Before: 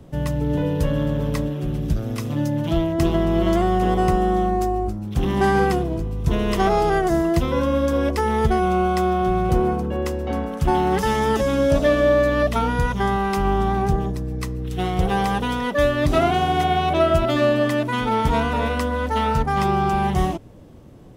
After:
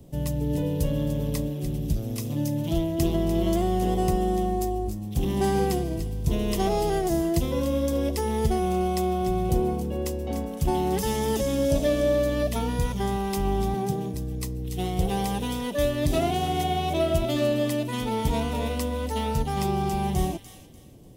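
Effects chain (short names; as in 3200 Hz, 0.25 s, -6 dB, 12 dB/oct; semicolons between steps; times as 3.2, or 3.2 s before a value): bell 1400 Hz -12.5 dB 1.1 oct; 13.74–14.14 HPF 120 Hz 24 dB/oct; high shelf 7300 Hz +11.5 dB; thin delay 0.295 s, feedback 30%, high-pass 1800 Hz, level -9.5 dB; gain -4 dB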